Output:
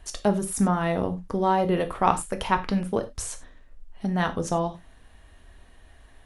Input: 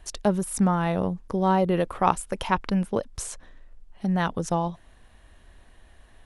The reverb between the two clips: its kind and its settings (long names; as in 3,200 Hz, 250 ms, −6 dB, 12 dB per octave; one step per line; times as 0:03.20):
reverb whose tail is shaped and stops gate 120 ms falling, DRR 6.5 dB